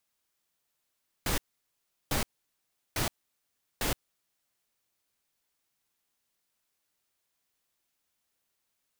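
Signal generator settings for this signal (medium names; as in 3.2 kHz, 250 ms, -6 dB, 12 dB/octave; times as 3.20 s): noise bursts pink, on 0.12 s, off 0.73 s, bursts 4, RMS -29 dBFS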